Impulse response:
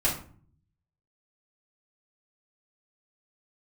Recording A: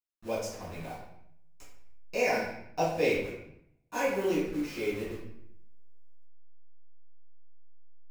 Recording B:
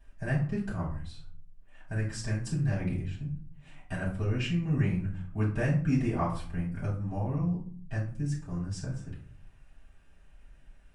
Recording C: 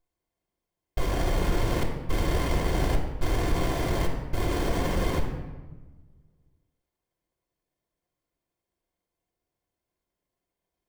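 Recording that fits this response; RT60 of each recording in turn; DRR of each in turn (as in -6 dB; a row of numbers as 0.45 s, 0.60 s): B; 0.70 s, 0.45 s, 1.2 s; -11.0 dB, -9.0 dB, 0.0 dB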